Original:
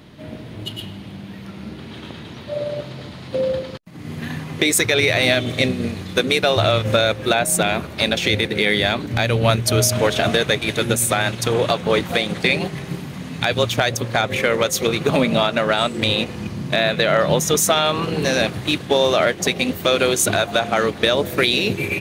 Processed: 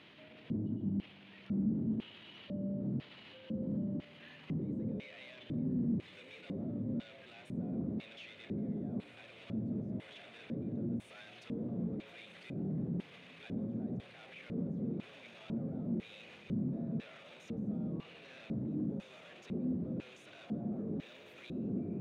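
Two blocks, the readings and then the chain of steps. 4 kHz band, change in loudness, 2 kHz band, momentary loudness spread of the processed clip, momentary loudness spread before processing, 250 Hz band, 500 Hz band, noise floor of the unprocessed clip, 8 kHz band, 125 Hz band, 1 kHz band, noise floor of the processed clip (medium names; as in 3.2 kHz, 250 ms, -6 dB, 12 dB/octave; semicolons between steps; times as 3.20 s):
-34.5 dB, -21.0 dB, -33.0 dB, 16 LU, 17 LU, -11.5 dB, -28.5 dB, -36 dBFS, under -40 dB, -16.5 dB, -35.5 dB, -56 dBFS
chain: de-hum 60.94 Hz, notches 18; saturation -20 dBFS, distortion -7 dB; compressor with a negative ratio -30 dBFS, ratio -1; on a send: echo that smears into a reverb 1465 ms, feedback 75%, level -5 dB; on the sum: peak limiter -30.5 dBFS, peak gain reduction 16 dB; LFO band-pass square 1 Hz 230–2700 Hz; tilt shelf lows +9.5 dB, about 940 Hz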